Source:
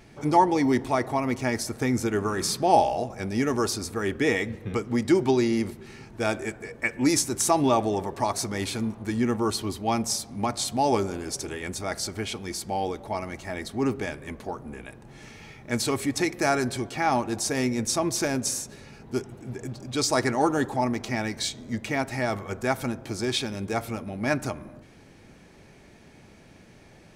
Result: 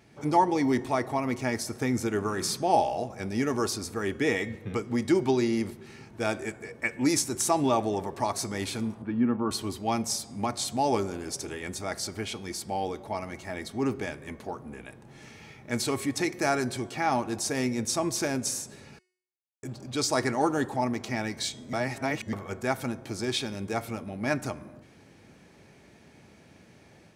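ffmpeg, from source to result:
ffmpeg -i in.wav -filter_complex "[0:a]asettb=1/sr,asplit=3[link_01][link_02][link_03];[link_01]atrim=end=9.024[link_04];[link_02]atrim=start=9.02:end=9.51,asetpts=PTS-STARTPTS,afade=type=in:duration=0.004:curve=qsin,afade=type=out:start_time=0.486:duration=0.004:curve=qsin,highpass=110,equalizer=frequency=250:width_type=q:width=4:gain=5,equalizer=frequency=400:width_type=q:width=4:gain=-6,equalizer=frequency=740:width_type=q:width=4:gain=-4,equalizer=frequency=2000:width_type=q:width=4:gain=-10,lowpass=frequency=2500:width=0.5412,lowpass=frequency=2500:width=1.3066[link_05];[link_03]atrim=start=9.506[link_06];[link_04][link_05]acrossfade=duration=0.004:curve1=hsin:curve2=qsin[link_07];[link_07][link_06]acrossfade=duration=0.004:curve1=qsin:curve2=hsin,asplit=5[link_08][link_09][link_10][link_11][link_12];[link_08]atrim=end=18.99,asetpts=PTS-STARTPTS,afade=type=out:start_time=18.986:duration=0.004:curve=hsin[link_13];[link_09]atrim=start=18.99:end=19.63,asetpts=PTS-STARTPTS,volume=0[link_14];[link_10]atrim=start=19.63:end=21.732,asetpts=PTS-STARTPTS,afade=type=in:duration=0.004:curve=hsin[link_15];[link_11]atrim=start=21.728:end=22.332,asetpts=PTS-STARTPTS,areverse[link_16];[link_12]atrim=start=22.328[link_17];[link_13][link_14][link_15]concat=n=3:v=0:a=1[link_18];[link_18][link_16]acrossfade=duration=0.004:curve1=hsin:curve2=hsin[link_19];[link_19][link_17]acrossfade=duration=0.004:curve1=hsin:curve2=hsin,highpass=69,bandreject=frequency=366.5:width_type=h:width=4,bandreject=frequency=733:width_type=h:width=4,bandreject=frequency=1099.5:width_type=h:width=4,bandreject=frequency=1466:width_type=h:width=4,bandreject=frequency=1832.5:width_type=h:width=4,bandreject=frequency=2199:width_type=h:width=4,bandreject=frequency=2565.5:width_type=h:width=4,bandreject=frequency=2932:width_type=h:width=4,bandreject=frequency=3298.5:width_type=h:width=4,bandreject=frequency=3665:width_type=h:width=4,bandreject=frequency=4031.5:width_type=h:width=4,bandreject=frequency=4398:width_type=h:width=4,bandreject=frequency=4764.5:width_type=h:width=4,bandreject=frequency=5131:width_type=h:width=4,bandreject=frequency=5497.5:width_type=h:width=4,bandreject=frequency=5864:width_type=h:width=4,bandreject=frequency=6230.5:width_type=h:width=4,bandreject=frequency=6597:width_type=h:width=4,bandreject=frequency=6963.5:width_type=h:width=4,bandreject=frequency=7330:width_type=h:width=4,bandreject=frequency=7696.5:width_type=h:width=4,bandreject=frequency=8063:width_type=h:width=4,bandreject=frequency=8429.5:width_type=h:width=4,bandreject=frequency=8796:width_type=h:width=4,bandreject=frequency=9162.5:width_type=h:width=4,bandreject=frequency=9529:width_type=h:width=4,bandreject=frequency=9895.5:width_type=h:width=4,bandreject=frequency=10262:width_type=h:width=4,dynaudnorm=framelen=110:gausssize=3:maxgain=3.5dB,volume=-6dB" out.wav

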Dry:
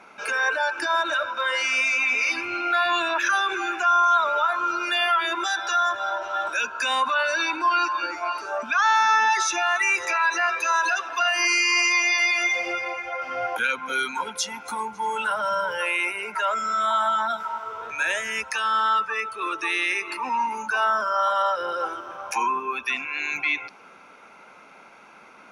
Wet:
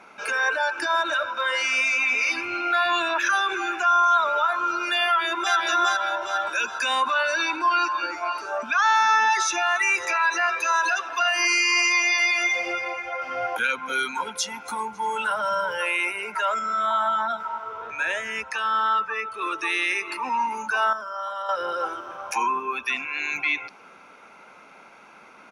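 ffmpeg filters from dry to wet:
ffmpeg -i in.wav -filter_complex "[0:a]asplit=2[link_01][link_02];[link_02]afade=type=in:start_time=5.05:duration=0.01,afade=type=out:start_time=5.56:duration=0.01,aecho=0:1:410|820|1230|1640|2050|2460:0.841395|0.378628|0.170383|0.0766721|0.0345025|0.0155261[link_03];[link_01][link_03]amix=inputs=2:normalize=0,asettb=1/sr,asplit=3[link_04][link_05][link_06];[link_04]atrim=end=16.594[link_07];[link_05]atrim=start=16.59:end=19.34,asetpts=PTS-STARTPTS,afade=type=in:duration=0.004:curve=qsin,afade=type=out:start_time=2.746:duration=0.004:curve=qsin,highshelf=frequency=4800:gain=-11[link_08];[link_06]atrim=start=19.336[link_09];[link_07][link_08]acrossfade=duration=0.004:curve1=hsin:curve2=qsin[link_10];[link_10][link_09]acrossfade=duration=0.004:curve1=qsin:curve2=hsin,asplit=3[link_11][link_12][link_13];[link_11]atrim=end=20.932[link_14];[link_12]atrim=start=20.928:end=21.492,asetpts=PTS-STARTPTS,volume=-9dB[link_15];[link_13]atrim=start=21.488[link_16];[link_14][link_15]acrossfade=duration=0.004:curve1=hsin:curve2=hsin[link_17];[link_17][link_16]acrossfade=duration=0.004:curve1=hsin:curve2=hsin" out.wav

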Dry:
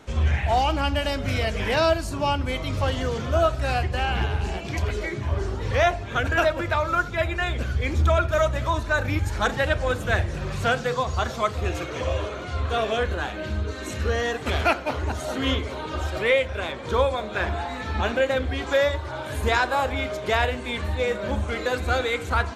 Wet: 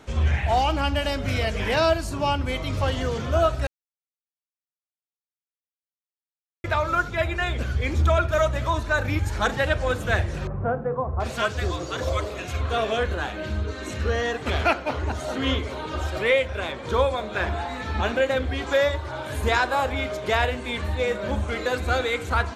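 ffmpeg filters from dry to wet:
ffmpeg -i in.wav -filter_complex "[0:a]asettb=1/sr,asplit=3[link_01][link_02][link_03];[link_01]atrim=end=10.474[link_04];[link_02]atrim=start=10.47:end=12.61,asetpts=PTS-STARTPTS,afade=type=in:duration=0.004:curve=qsin,afade=type=out:start_time=2.136:duration=0.004:curve=qsin,acrossover=split=1200[link_05][link_06];[link_06]adelay=730[link_07];[link_05][link_07]amix=inputs=2:normalize=0,atrim=end_sample=94374[link_08];[link_03]atrim=start=12.606[link_09];[link_04][link_08]acrossfade=duration=0.004:curve1=hsin:curve2=qsin[link_10];[link_10][link_09]acrossfade=duration=0.004:curve1=qsin:curve2=hsin,asettb=1/sr,asplit=3[link_11][link_12][link_13];[link_11]atrim=end=13.664[link_14];[link_12]atrim=start=13.66:end=15.55,asetpts=PTS-STARTPTS,afade=type=in:duration=0.004:curve=qsin,afade=type=out:start_time=1.886:duration=0.004:curve=qsin,highshelf=frequency=11000:gain=-10.5[link_15];[link_13]atrim=start=15.546[link_16];[link_14][link_15]acrossfade=duration=0.004:curve1=hsin:curve2=qsin[link_17];[link_17][link_16]acrossfade=duration=0.004:curve1=qsin:curve2=hsin,asplit=3[link_18][link_19][link_20];[link_18]atrim=end=3.67,asetpts=PTS-STARTPTS,afade=type=out:start_time=3.666:duration=0.004:curve=hsin[link_21];[link_19]atrim=start=3.67:end=6.64,asetpts=PTS-STARTPTS,volume=0[link_22];[link_20]atrim=start=6.64,asetpts=PTS-STARTPTS,afade=type=in:duration=0.004:curve=hsin[link_23];[link_21][link_22][link_23]concat=n=3:v=0:a=1" out.wav

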